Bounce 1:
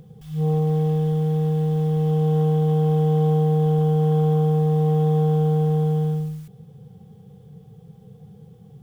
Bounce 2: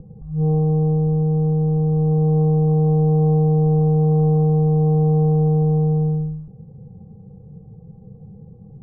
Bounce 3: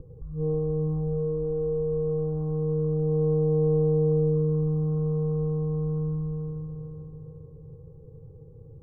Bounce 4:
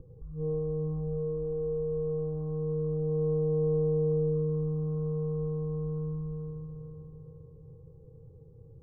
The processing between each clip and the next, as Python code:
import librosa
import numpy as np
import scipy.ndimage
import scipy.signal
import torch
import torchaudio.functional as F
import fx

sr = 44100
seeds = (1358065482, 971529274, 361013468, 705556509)

y1 = scipy.signal.sosfilt(scipy.signal.bessel(8, 610.0, 'lowpass', norm='mag', fs=sr, output='sos'), x)
y1 = fx.low_shelf(y1, sr, hz=80.0, db=10.5)
y1 = y1 + 0.35 * np.pad(y1, (int(3.5 * sr / 1000.0), 0))[:len(y1)]
y1 = F.gain(torch.from_numpy(y1), 4.5).numpy()
y2 = fx.rider(y1, sr, range_db=5, speed_s=0.5)
y2 = fx.fixed_phaser(y2, sr, hz=730.0, stages=6)
y2 = fx.echo_feedback(y2, sr, ms=433, feedback_pct=47, wet_db=-5)
y2 = F.gain(torch.from_numpy(y2), -3.5).numpy()
y3 = fx.doubler(y2, sr, ms=24.0, db=-10.5)
y3 = F.gain(torch.from_numpy(y3), -5.5).numpy()